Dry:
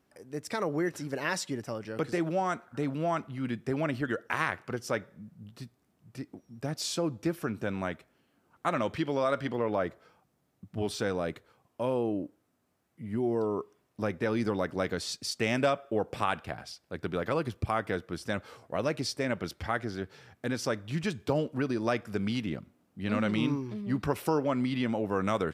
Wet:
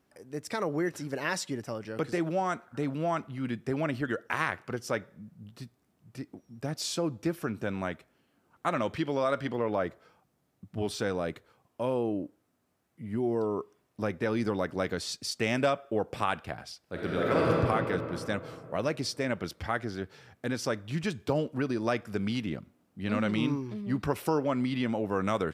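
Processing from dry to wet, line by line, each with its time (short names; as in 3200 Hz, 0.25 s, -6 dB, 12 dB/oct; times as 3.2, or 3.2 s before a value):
16.82–17.5 reverb throw, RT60 3 s, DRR -5 dB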